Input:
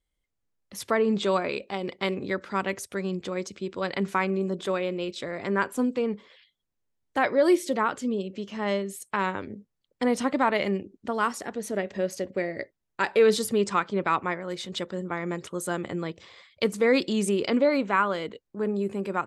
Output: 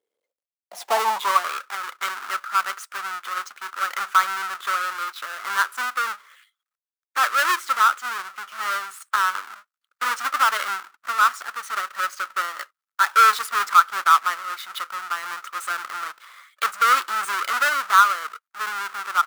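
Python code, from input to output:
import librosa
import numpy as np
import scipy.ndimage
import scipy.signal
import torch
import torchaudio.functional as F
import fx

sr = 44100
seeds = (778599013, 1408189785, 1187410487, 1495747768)

y = fx.halfwave_hold(x, sr)
y = fx.filter_sweep_highpass(y, sr, from_hz=440.0, to_hz=1300.0, start_s=0.07, end_s=1.59, q=7.0)
y = F.gain(torch.from_numpy(y), -3.5).numpy()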